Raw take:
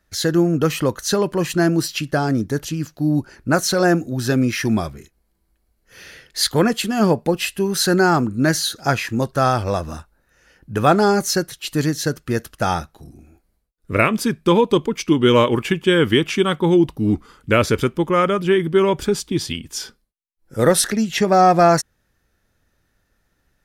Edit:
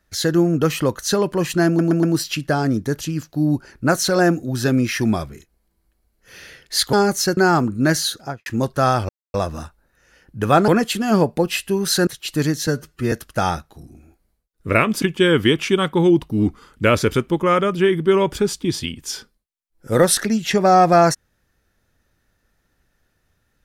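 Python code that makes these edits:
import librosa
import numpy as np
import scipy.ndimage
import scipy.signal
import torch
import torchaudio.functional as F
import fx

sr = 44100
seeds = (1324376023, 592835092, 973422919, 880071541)

y = fx.studio_fade_out(x, sr, start_s=8.67, length_s=0.38)
y = fx.edit(y, sr, fx.stutter(start_s=1.67, slice_s=0.12, count=4),
    fx.swap(start_s=6.57, length_s=1.39, other_s=11.02, other_length_s=0.44),
    fx.insert_silence(at_s=9.68, length_s=0.25),
    fx.stretch_span(start_s=12.06, length_s=0.3, factor=1.5),
    fx.cut(start_s=14.26, length_s=1.43), tone=tone)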